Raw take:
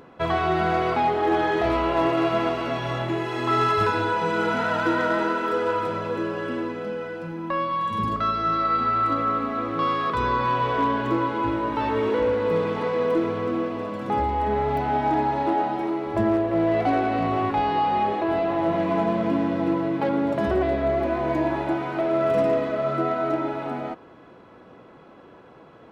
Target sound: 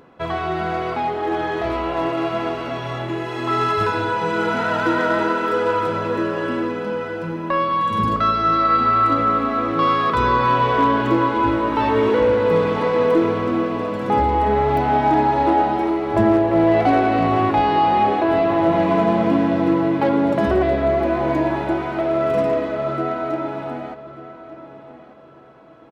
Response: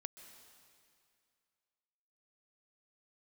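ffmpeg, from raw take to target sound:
-filter_complex "[0:a]dynaudnorm=framelen=720:gausssize=13:maxgain=7dB,asplit=2[link_01][link_02];[link_02]adelay=1188,lowpass=frequency=4800:poles=1,volume=-15dB,asplit=2[link_03][link_04];[link_04]adelay=1188,lowpass=frequency=4800:poles=1,volume=0.29,asplit=2[link_05][link_06];[link_06]adelay=1188,lowpass=frequency=4800:poles=1,volume=0.29[link_07];[link_01][link_03][link_05][link_07]amix=inputs=4:normalize=0,volume=-1dB"

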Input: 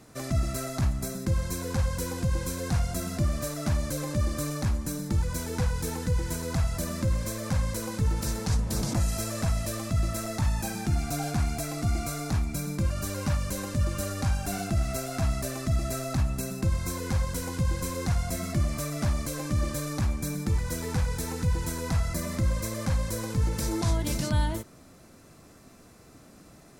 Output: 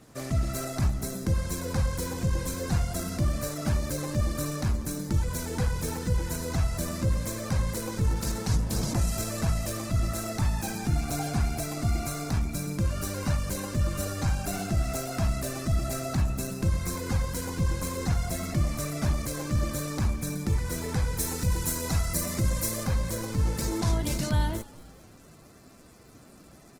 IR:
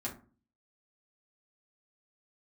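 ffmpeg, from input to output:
-filter_complex "[0:a]asettb=1/sr,asplit=3[link_01][link_02][link_03];[link_01]atrim=end=21.194[link_04];[link_02]atrim=start=21.19:end=22.84,asetpts=PTS-STARTPTS,afade=type=in:duration=0.004:curve=qsin,afade=type=out:start_time=1.646:duration=0.004:curve=qsin,aemphasis=mode=production:type=cd[link_05];[link_03]atrim=start=22.836[link_06];[link_04][link_05]acrossfade=duration=0.004:curve1=hsin:curve2=qsin[link_07];[link_07][link_06]acrossfade=duration=0.004:curve1=qsin:curve2=hsin,asplit=5[link_08][link_09][link_10][link_11][link_12];[link_09]adelay=222,afreqshift=-53,volume=-22dB[link_13];[link_10]adelay=444,afreqshift=-106,volume=-27.5dB[link_14];[link_11]adelay=666,afreqshift=-159,volume=-33dB[link_15];[link_12]adelay=888,afreqshift=-212,volume=-38.5dB[link_16];[link_08][link_13][link_14][link_15][link_16]amix=inputs=5:normalize=0" -ar 48000 -c:a libopus -b:a 16k

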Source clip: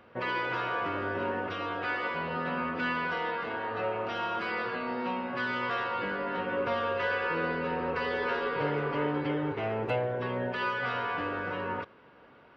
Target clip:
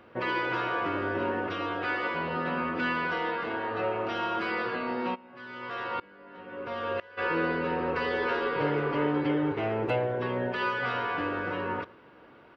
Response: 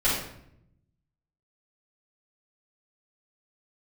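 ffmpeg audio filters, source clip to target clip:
-filter_complex "[0:a]equalizer=frequency=330:width_type=o:width=0.29:gain=6.5,asplit=2[link_01][link_02];[link_02]adelay=110.8,volume=-23dB,highshelf=frequency=4000:gain=-2.49[link_03];[link_01][link_03]amix=inputs=2:normalize=0,asplit=3[link_04][link_05][link_06];[link_04]afade=type=out:start_time=5.14:duration=0.02[link_07];[link_05]aeval=exprs='val(0)*pow(10,-25*if(lt(mod(-1*n/s,1),2*abs(-1)/1000),1-mod(-1*n/s,1)/(2*abs(-1)/1000),(mod(-1*n/s,1)-2*abs(-1)/1000)/(1-2*abs(-1)/1000))/20)':channel_layout=same,afade=type=in:start_time=5.14:duration=0.02,afade=type=out:start_time=7.17:duration=0.02[link_08];[link_06]afade=type=in:start_time=7.17:duration=0.02[link_09];[link_07][link_08][link_09]amix=inputs=3:normalize=0,volume=1.5dB"

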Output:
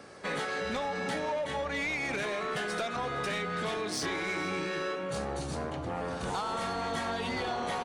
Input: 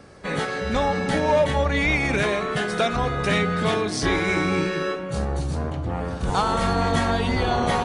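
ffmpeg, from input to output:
ffmpeg -i in.wav -af "highpass=frequency=350:poles=1,acompressor=threshold=-28dB:ratio=6,asoftclip=type=tanh:threshold=-26.5dB,aecho=1:1:463:0.0891" out.wav

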